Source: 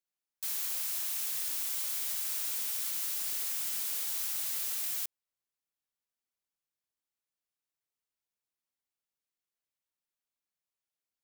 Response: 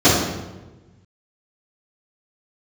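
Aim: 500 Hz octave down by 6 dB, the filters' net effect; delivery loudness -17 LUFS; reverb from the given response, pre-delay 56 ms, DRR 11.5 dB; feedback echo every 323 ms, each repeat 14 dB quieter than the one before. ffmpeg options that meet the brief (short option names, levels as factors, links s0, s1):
-filter_complex "[0:a]equalizer=f=500:t=o:g=-8,aecho=1:1:323|646:0.2|0.0399,asplit=2[s0][s1];[1:a]atrim=start_sample=2205,adelay=56[s2];[s1][s2]afir=irnorm=-1:irlink=0,volume=0.0133[s3];[s0][s3]amix=inputs=2:normalize=0,volume=5.01"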